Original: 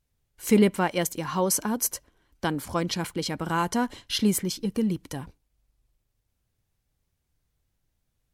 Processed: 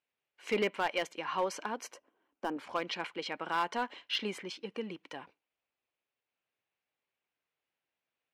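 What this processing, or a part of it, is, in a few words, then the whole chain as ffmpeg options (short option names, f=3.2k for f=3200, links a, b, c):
megaphone: -filter_complex "[0:a]highpass=490,lowpass=2.9k,equalizer=f=2.6k:t=o:w=0.59:g=7,asoftclip=type=hard:threshold=-19.5dB,asettb=1/sr,asplit=3[a][b][c];[a]atrim=end=1.944[d];[b]atrim=start=1.94:end=2.57,asetpts=PTS-STARTPTS,afade=t=in:d=0.004:c=qsin,afade=t=out:st=0.626:d=0.004:c=qsin,equalizer=f=125:t=o:w=1:g=-5,equalizer=f=250:t=o:w=1:g=8,equalizer=f=2k:t=o:w=1:g=-8,equalizer=f=4k:t=o:w=1:g=-10[e];[c]atrim=start=2.566[f];[d][e]acrossfade=d=0.004:c1=hsin:c2=qsin[g];[g][f]acrossfade=d=0.004:c1=qsin:c2=hsin,volume=-3.5dB"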